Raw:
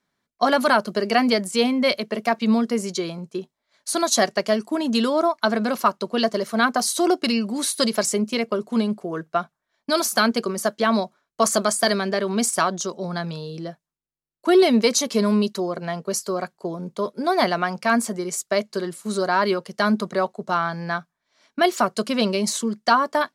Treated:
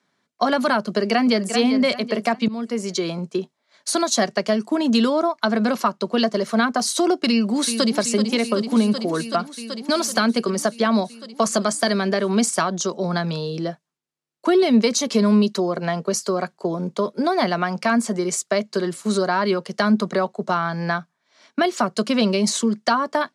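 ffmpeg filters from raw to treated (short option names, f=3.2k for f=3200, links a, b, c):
-filter_complex "[0:a]asplit=2[a][b];[b]afade=t=in:st=0.86:d=0.01,afade=t=out:st=1.54:d=0.01,aecho=0:1:390|780|1170|1560:0.266073|0.106429|0.0425716|0.0170286[c];[a][c]amix=inputs=2:normalize=0,asplit=2[d][e];[e]afade=t=in:st=7.29:d=0.01,afade=t=out:st=7.97:d=0.01,aecho=0:1:380|760|1140|1520|1900|2280|2660|3040|3420|3800|4180|4560:0.334965|0.267972|0.214378|0.171502|0.137202|0.109761|0.0878092|0.0702473|0.0561979|0.0449583|0.0359666|0.0287733[f];[d][f]amix=inputs=2:normalize=0,asplit=2[g][h];[g]atrim=end=2.48,asetpts=PTS-STARTPTS,afade=t=out:st=2.476:d=0.004:c=hsin:silence=0.0749894[i];[h]atrim=start=2.48,asetpts=PTS-STARTPTS,afade=t=in:d=0.73:silence=0.0749894[j];[i][j]concat=n=2:v=0:a=1,lowpass=8.4k,acrossover=split=210[k][l];[l]acompressor=threshold=-28dB:ratio=2.5[m];[k][m]amix=inputs=2:normalize=0,highpass=140,volume=7dB"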